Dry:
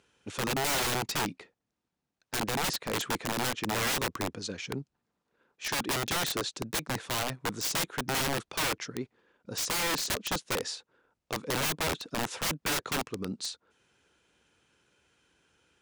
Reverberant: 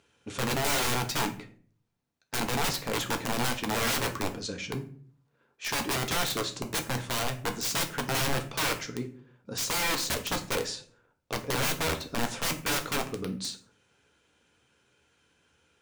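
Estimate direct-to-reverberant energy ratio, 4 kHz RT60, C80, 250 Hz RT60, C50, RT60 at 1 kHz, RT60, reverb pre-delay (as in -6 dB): 4.5 dB, 0.30 s, 17.0 dB, 0.65 s, 13.0 dB, 0.40 s, 0.50 s, 4 ms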